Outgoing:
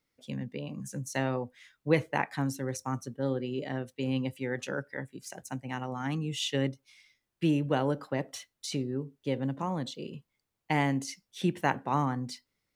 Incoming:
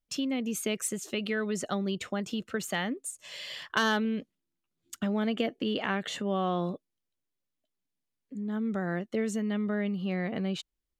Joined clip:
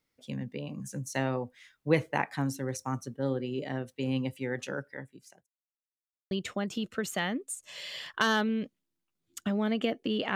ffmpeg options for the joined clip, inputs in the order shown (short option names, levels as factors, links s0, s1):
-filter_complex "[0:a]apad=whole_dur=10.35,atrim=end=10.35,asplit=2[s0][s1];[s0]atrim=end=5.47,asetpts=PTS-STARTPTS,afade=t=out:st=4.35:d=1.12:c=qsin[s2];[s1]atrim=start=5.47:end=6.31,asetpts=PTS-STARTPTS,volume=0[s3];[1:a]atrim=start=1.87:end=5.91,asetpts=PTS-STARTPTS,afade=t=in:d=0.004:c=hsin[s4];[s2][s3][s4]concat=n=3:v=0:a=1"